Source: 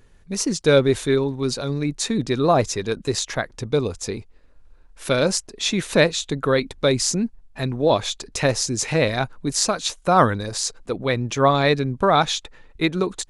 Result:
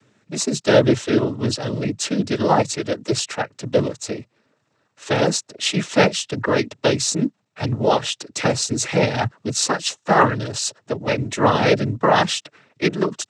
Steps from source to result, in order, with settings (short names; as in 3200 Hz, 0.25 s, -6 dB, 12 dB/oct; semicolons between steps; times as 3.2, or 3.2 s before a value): companded quantiser 8-bit; noise vocoder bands 12; gain +1.5 dB